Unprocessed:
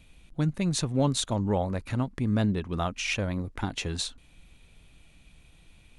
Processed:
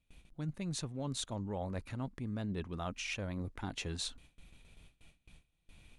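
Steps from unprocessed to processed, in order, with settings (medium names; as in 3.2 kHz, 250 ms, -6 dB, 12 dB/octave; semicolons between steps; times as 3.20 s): gate with hold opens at -44 dBFS; reverse; compression 6:1, threshold -33 dBFS, peak gain reduction 13 dB; reverse; trim -3 dB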